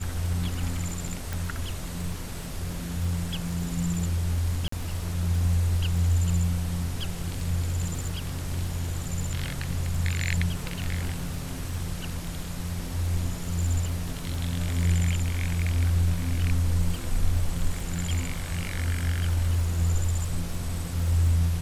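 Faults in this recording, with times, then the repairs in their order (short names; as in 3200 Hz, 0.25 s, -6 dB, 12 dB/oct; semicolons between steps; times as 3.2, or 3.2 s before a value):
crackle 38/s -33 dBFS
1.33 pop
4.68–4.72 gap 44 ms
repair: de-click; interpolate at 4.68, 44 ms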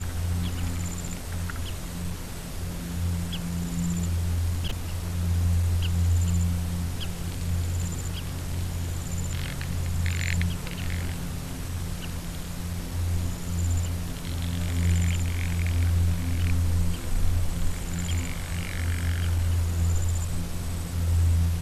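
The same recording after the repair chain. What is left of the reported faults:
1.33 pop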